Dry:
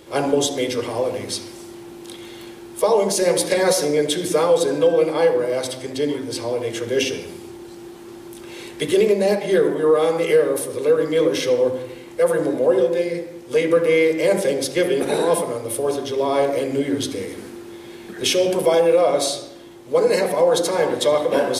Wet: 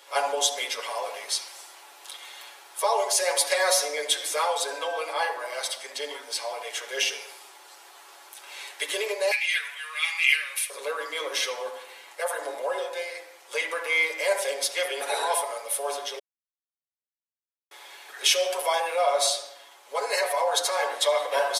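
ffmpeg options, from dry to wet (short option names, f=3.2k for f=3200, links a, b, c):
-filter_complex "[0:a]asettb=1/sr,asplit=3[a][b][c];[a]atrim=end=9.314[d];[b]atrim=start=9.31:end=10.7,asetpts=PTS-STARTPTS,afade=t=in:d=0.004:c=qsin,afade=t=out:st=1.386:d=0.004:c=qsin,highpass=f=2.4k:t=q:w=7.9[e];[c]atrim=start=10.696[f];[d][e]acrossfade=d=0.004:c1=hsin:c2=qsin[g];[g][f]acrossfade=d=0.004:c1=qsin:c2=hsin,asplit=3[h][i][j];[h]atrim=end=16.19,asetpts=PTS-STARTPTS,afade=t=out:st=16.186:d=0.004:c=hsin[k];[i]atrim=start=16.19:end=17.71,asetpts=PTS-STARTPTS,volume=0[l];[j]atrim=start=17.71,asetpts=PTS-STARTPTS,afade=t=in:d=0.004:c=hsin[m];[k][l][m]concat=n=3:v=0:a=1,highpass=f=690:w=0.5412,highpass=f=690:w=1.3066,aecho=1:1:7.1:0.71,volume=-2dB"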